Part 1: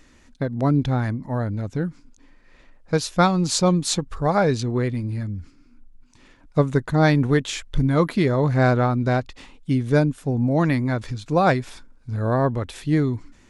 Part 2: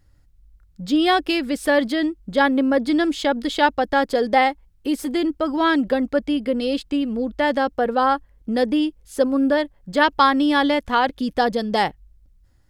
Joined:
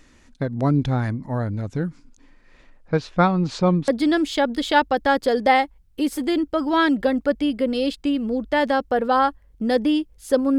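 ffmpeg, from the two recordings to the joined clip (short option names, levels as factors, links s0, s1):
-filter_complex "[0:a]asettb=1/sr,asplit=3[s0][s1][s2];[s0]atrim=end=2.884[s3];[s1]atrim=start=2.88:end=3.88,asetpts=PTS-STARTPTS,afade=t=in:d=0.004:c=qsin,afade=t=out:st=0.996:d=0.004:c=qsin,lowpass=2700[s4];[s2]atrim=start=3.876[s5];[s3][s4]acrossfade=d=0.004:c1=hsin:c2=qsin[s6];[s6][s5]acrossfade=d=0.004:c1=qsin:c2=hsin,apad=whole_dur=10.58,atrim=end=10.58,atrim=end=3.882[s7];[1:a]atrim=start=2.748:end=9.45[s8];[s7][s8]acrossfade=d=0.004:c1=hsin:c2=hsin"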